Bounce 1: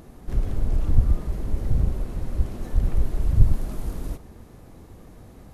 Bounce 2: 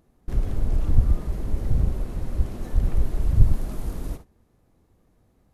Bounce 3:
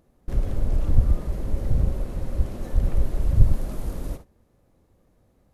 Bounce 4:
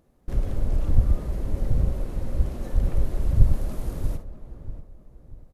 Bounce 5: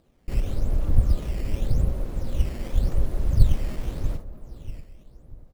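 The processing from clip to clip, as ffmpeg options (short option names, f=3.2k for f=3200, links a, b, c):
-af "agate=range=-17dB:threshold=-36dB:ratio=16:detection=peak"
-af "equalizer=f=550:t=o:w=0.23:g=7"
-filter_complex "[0:a]asplit=2[a][b];[b]adelay=638,lowpass=f=1.4k:p=1,volume=-12dB,asplit=2[c][d];[d]adelay=638,lowpass=f=1.4k:p=1,volume=0.39,asplit=2[e][f];[f]adelay=638,lowpass=f=1.4k:p=1,volume=0.39,asplit=2[g][h];[h]adelay=638,lowpass=f=1.4k:p=1,volume=0.39[i];[a][c][e][g][i]amix=inputs=5:normalize=0,volume=-1dB"
-af "acrusher=samples=10:mix=1:aa=0.000001:lfo=1:lforange=16:lforate=0.88"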